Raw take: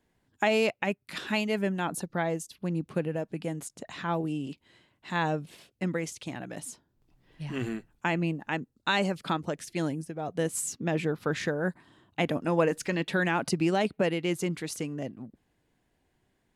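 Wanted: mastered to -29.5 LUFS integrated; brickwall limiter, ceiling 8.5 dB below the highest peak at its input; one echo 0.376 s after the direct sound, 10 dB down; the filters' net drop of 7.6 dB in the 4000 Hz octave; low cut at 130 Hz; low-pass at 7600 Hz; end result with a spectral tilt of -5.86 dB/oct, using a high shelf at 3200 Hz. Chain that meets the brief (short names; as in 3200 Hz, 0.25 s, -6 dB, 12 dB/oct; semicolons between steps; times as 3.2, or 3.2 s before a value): HPF 130 Hz; LPF 7600 Hz; high shelf 3200 Hz -7 dB; bell 4000 Hz -5.5 dB; limiter -20 dBFS; echo 0.376 s -10 dB; gain +3.5 dB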